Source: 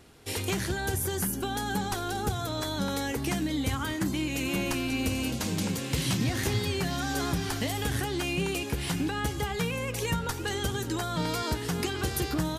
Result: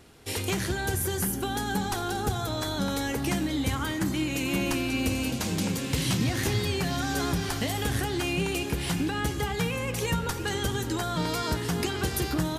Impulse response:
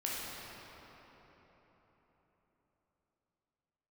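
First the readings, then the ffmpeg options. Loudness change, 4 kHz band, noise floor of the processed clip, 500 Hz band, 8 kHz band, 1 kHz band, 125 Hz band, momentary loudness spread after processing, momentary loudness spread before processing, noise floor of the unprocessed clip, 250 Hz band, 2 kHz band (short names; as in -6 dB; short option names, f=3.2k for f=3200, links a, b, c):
+1.5 dB, +1.5 dB, -33 dBFS, +1.5 dB, +1.5 dB, +1.5 dB, +1.5 dB, 2 LU, 3 LU, -35 dBFS, +1.5 dB, +1.5 dB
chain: -filter_complex "[0:a]asplit=2[a][b];[1:a]atrim=start_sample=2205[c];[b][c]afir=irnorm=-1:irlink=0,volume=-14dB[d];[a][d]amix=inputs=2:normalize=0"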